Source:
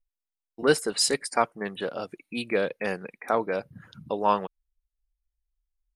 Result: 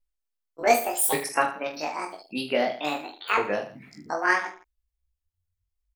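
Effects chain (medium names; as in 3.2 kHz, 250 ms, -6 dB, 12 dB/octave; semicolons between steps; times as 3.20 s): sawtooth pitch modulation +12 st, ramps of 1124 ms; reverse bouncing-ball echo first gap 20 ms, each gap 1.25×, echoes 5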